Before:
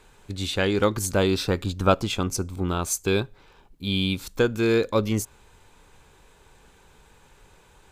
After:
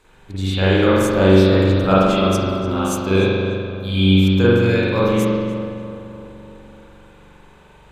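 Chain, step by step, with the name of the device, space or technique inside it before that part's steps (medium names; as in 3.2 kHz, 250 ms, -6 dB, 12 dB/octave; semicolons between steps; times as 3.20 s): dub delay into a spring reverb (filtered feedback delay 295 ms, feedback 60%, low-pass 2.4 kHz, level -10 dB; spring tank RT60 1.6 s, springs 42 ms, chirp 30 ms, DRR -9.5 dB); trim -3 dB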